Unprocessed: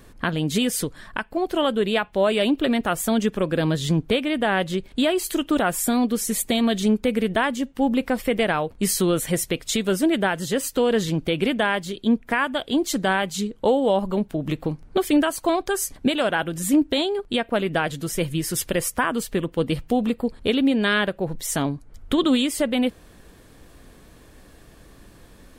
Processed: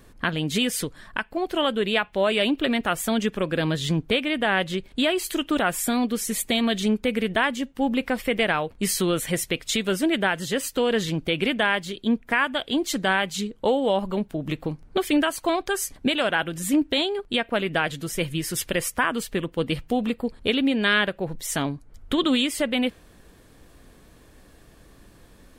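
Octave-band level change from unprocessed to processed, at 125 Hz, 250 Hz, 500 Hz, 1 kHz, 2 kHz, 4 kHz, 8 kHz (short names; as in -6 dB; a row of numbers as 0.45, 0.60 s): -3.0, -3.0, -2.5, -1.5, +1.5, +1.5, -2.0 dB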